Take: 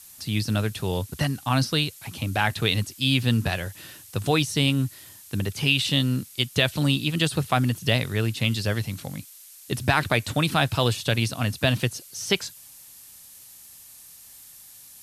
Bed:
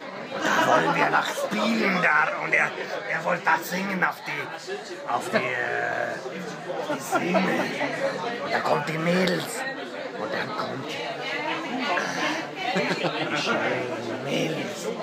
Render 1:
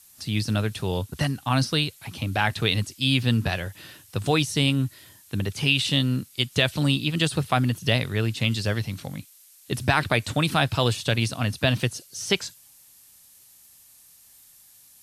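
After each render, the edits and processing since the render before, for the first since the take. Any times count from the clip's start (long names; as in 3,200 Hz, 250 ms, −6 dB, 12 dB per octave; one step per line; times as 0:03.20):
noise reduction from a noise print 6 dB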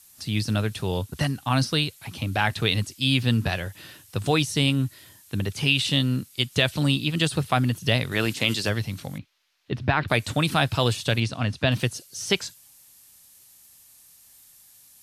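0:08.11–0:08.68: ceiling on every frequency bin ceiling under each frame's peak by 15 dB
0:09.18–0:10.08: high-frequency loss of the air 270 metres
0:11.20–0:11.72: high-frequency loss of the air 78 metres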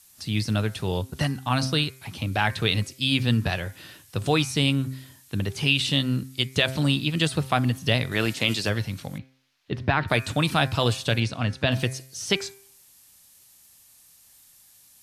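high-shelf EQ 9,800 Hz −3.5 dB
hum removal 131.4 Hz, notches 19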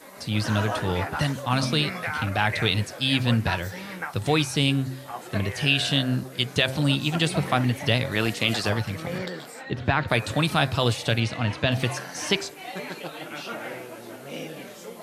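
mix in bed −10 dB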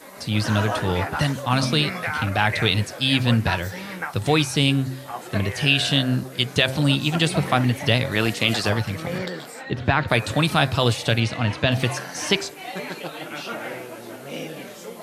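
level +3 dB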